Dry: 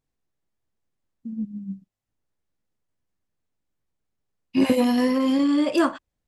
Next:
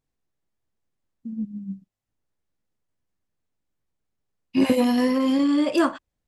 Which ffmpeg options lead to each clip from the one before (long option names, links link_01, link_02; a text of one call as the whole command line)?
ffmpeg -i in.wav -af anull out.wav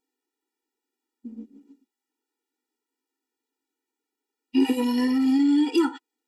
ffmpeg -i in.wav -af "acompressor=threshold=-26dB:ratio=2,afftfilt=real='re*eq(mod(floor(b*sr/1024/250),2),1)':imag='im*eq(mod(floor(b*sr/1024/250),2),1)':win_size=1024:overlap=0.75,volume=5.5dB" out.wav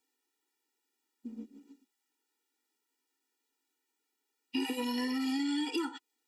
ffmpeg -i in.wav -filter_complex "[0:a]tiltshelf=frequency=820:gain=-5,acrossover=split=240|870|2000|5700[link_01][link_02][link_03][link_04][link_05];[link_01]acompressor=threshold=-44dB:ratio=4[link_06];[link_02]acompressor=threshold=-36dB:ratio=4[link_07];[link_03]acompressor=threshold=-47dB:ratio=4[link_08];[link_04]acompressor=threshold=-44dB:ratio=4[link_09];[link_05]acompressor=threshold=-52dB:ratio=4[link_10];[link_06][link_07][link_08][link_09][link_10]amix=inputs=5:normalize=0" out.wav